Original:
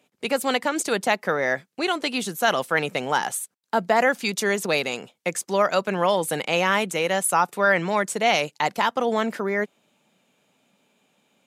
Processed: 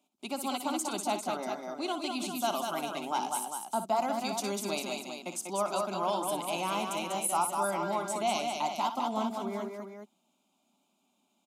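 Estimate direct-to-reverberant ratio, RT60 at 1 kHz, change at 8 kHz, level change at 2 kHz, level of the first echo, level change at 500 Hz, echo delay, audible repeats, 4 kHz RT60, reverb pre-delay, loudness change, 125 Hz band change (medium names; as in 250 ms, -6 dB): no reverb, no reverb, -6.0 dB, -18.0 dB, -10.5 dB, -10.5 dB, 60 ms, 4, no reverb, no reverb, -9.5 dB, -11.5 dB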